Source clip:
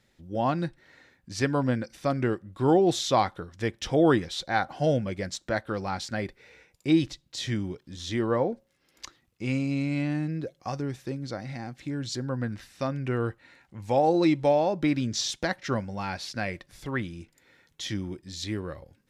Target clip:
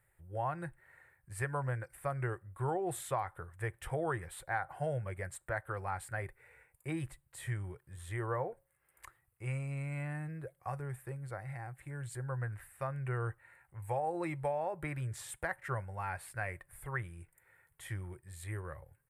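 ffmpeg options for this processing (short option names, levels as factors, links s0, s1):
-af "firequalizer=gain_entry='entry(130,0);entry(240,-28);entry(360,-8);entry(590,-5);entry(870,-1);entry(1800,0);entry(3600,-20);entry(5900,-24);entry(8500,7)':delay=0.05:min_phase=1,acompressor=threshold=0.0447:ratio=6,volume=0.668"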